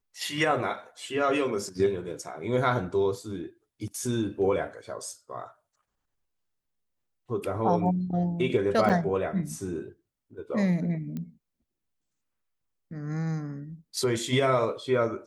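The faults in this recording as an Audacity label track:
8.890000	8.900000	dropout 7.6 ms
11.170000	11.170000	pop -24 dBFS

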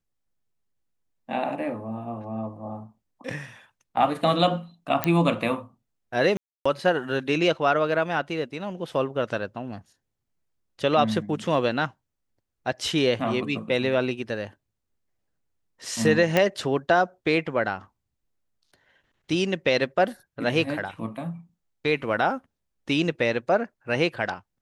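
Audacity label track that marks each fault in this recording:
5.040000	5.040000	pop -6 dBFS
6.370000	6.660000	dropout 285 ms
16.370000	16.370000	pop -7 dBFS

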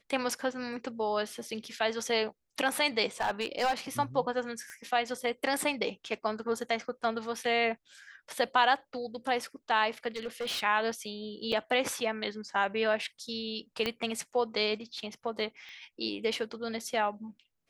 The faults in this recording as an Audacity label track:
3.200000	3.730000	clipped -24 dBFS
4.700000	4.700000	pop -28 dBFS
10.080000	10.600000	clipped -31 dBFS
11.520000	11.530000	dropout 5.2 ms
13.860000	13.860000	pop -16 dBFS
15.690000	15.690000	pop -35 dBFS

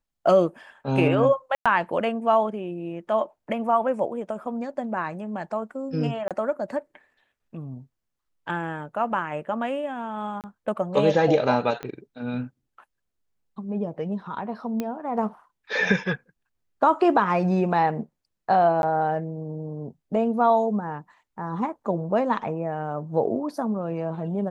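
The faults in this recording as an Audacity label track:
1.550000	1.660000	dropout 106 ms
6.280000	6.310000	dropout 27 ms
10.410000	10.440000	dropout 28 ms
11.830000	11.830000	pop -19 dBFS
14.800000	14.800000	pop -15 dBFS
18.820000	18.830000	dropout 11 ms

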